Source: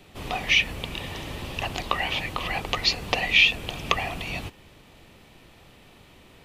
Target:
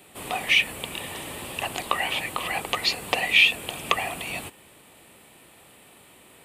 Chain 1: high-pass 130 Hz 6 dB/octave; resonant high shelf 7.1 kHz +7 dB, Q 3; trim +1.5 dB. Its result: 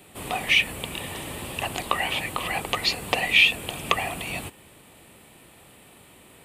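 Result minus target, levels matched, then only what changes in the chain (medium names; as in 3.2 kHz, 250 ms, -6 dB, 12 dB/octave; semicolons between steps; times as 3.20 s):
125 Hz band +5.0 dB
change: high-pass 300 Hz 6 dB/octave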